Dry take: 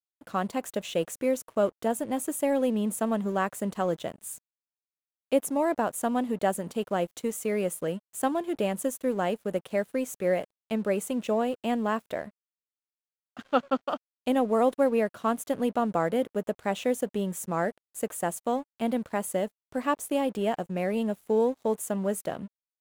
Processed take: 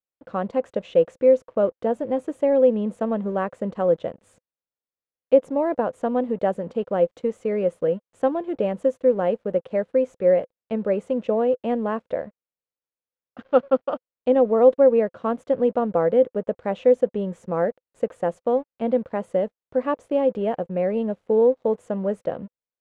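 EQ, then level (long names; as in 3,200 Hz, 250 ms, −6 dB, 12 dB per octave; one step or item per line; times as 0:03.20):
head-to-tape spacing loss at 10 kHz 30 dB
parametric band 510 Hz +11 dB 0.3 octaves
+3.0 dB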